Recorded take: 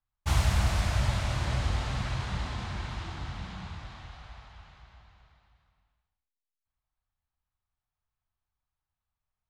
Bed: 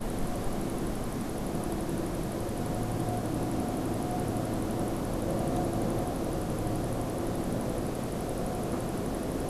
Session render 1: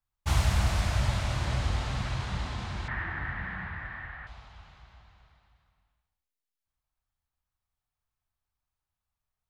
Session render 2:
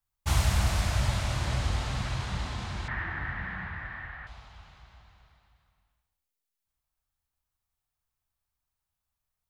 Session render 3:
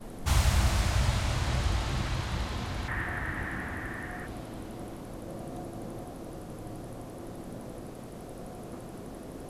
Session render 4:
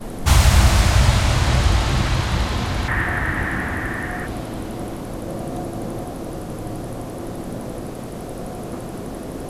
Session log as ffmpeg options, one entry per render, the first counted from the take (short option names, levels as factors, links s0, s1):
-filter_complex "[0:a]asettb=1/sr,asplit=3[s0][s1][s2];[s0]atrim=end=2.884[s3];[s1]atrim=start=2.88:end=4.27,asetpts=PTS-STARTPTS,afade=t=in:d=0.004:c=qsin,afade=t=out:st=1.386:d=0.004:c=qsin,lowpass=f=1800:t=q:w=9.2[s4];[s2]atrim=start=4.266[s5];[s3][s4]acrossfade=d=0.004:c1=hsin:c2=qsin[s6];[s6][s5]acrossfade=d=0.004:c1=qsin:c2=hsin"
-af "highshelf=f=6700:g=6"
-filter_complex "[1:a]volume=0.316[s0];[0:a][s0]amix=inputs=2:normalize=0"
-af "volume=3.98,alimiter=limit=0.708:level=0:latency=1"